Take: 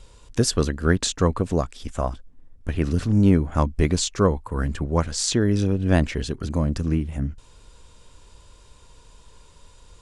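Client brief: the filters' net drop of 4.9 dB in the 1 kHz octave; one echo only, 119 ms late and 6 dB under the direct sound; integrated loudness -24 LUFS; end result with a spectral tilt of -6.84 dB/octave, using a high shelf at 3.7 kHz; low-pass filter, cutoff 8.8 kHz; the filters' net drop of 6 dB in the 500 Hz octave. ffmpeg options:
-af "lowpass=8800,equalizer=f=500:t=o:g=-7,equalizer=f=1000:t=o:g=-3.5,highshelf=f=3700:g=-6.5,aecho=1:1:119:0.501"

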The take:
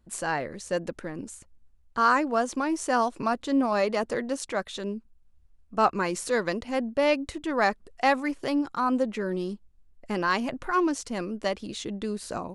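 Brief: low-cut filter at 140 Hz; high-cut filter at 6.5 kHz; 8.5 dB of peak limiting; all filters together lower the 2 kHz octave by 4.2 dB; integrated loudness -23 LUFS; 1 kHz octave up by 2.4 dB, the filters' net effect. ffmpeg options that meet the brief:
-af "highpass=140,lowpass=6500,equalizer=f=1000:t=o:g=5,equalizer=f=2000:t=o:g=-8,volume=1.88,alimiter=limit=0.299:level=0:latency=1"

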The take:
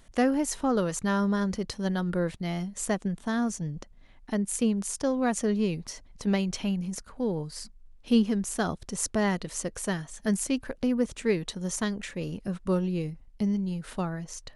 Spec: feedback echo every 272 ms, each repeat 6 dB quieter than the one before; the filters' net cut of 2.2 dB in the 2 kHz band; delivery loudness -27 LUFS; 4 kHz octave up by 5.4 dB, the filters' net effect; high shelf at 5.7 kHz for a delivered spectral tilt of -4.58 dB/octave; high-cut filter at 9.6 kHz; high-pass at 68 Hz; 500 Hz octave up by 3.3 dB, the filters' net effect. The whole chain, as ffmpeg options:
-af "highpass=68,lowpass=9600,equalizer=f=500:t=o:g=4,equalizer=f=2000:t=o:g=-5,equalizer=f=4000:t=o:g=6,highshelf=f=5700:g=6.5,aecho=1:1:272|544|816|1088|1360|1632:0.501|0.251|0.125|0.0626|0.0313|0.0157,volume=0.944"

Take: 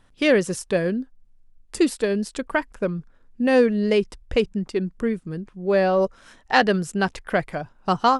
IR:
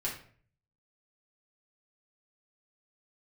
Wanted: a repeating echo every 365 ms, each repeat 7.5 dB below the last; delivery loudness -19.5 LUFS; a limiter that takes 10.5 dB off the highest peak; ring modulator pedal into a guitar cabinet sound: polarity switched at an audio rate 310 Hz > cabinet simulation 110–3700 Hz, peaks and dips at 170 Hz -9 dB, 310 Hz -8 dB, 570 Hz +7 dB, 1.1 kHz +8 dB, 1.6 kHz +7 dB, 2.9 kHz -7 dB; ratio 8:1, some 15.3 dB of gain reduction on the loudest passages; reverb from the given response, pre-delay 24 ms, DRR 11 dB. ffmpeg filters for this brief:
-filter_complex "[0:a]acompressor=threshold=0.0355:ratio=8,alimiter=level_in=1.19:limit=0.0631:level=0:latency=1,volume=0.841,aecho=1:1:365|730|1095|1460|1825:0.422|0.177|0.0744|0.0312|0.0131,asplit=2[s0][s1];[1:a]atrim=start_sample=2205,adelay=24[s2];[s1][s2]afir=irnorm=-1:irlink=0,volume=0.188[s3];[s0][s3]amix=inputs=2:normalize=0,aeval=exprs='val(0)*sgn(sin(2*PI*310*n/s))':c=same,highpass=110,equalizer=f=170:t=q:w=4:g=-9,equalizer=f=310:t=q:w=4:g=-8,equalizer=f=570:t=q:w=4:g=7,equalizer=f=1100:t=q:w=4:g=8,equalizer=f=1600:t=q:w=4:g=7,equalizer=f=2900:t=q:w=4:g=-7,lowpass=f=3700:w=0.5412,lowpass=f=3700:w=1.3066,volume=4.47"

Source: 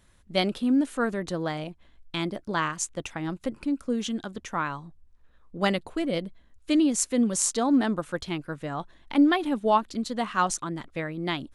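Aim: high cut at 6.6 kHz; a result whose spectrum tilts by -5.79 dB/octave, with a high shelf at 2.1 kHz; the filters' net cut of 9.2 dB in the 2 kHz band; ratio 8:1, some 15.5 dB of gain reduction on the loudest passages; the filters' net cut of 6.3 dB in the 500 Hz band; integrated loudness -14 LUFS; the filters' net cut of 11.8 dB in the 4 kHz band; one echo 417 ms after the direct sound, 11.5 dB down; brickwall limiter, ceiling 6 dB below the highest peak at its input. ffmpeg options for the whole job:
-af "lowpass=6600,equalizer=f=500:t=o:g=-7.5,equalizer=f=2000:t=o:g=-7.5,highshelf=f=2100:g=-5,equalizer=f=4000:t=o:g=-7.5,acompressor=threshold=0.02:ratio=8,alimiter=level_in=2:limit=0.0631:level=0:latency=1,volume=0.501,aecho=1:1:417:0.266,volume=21.1"

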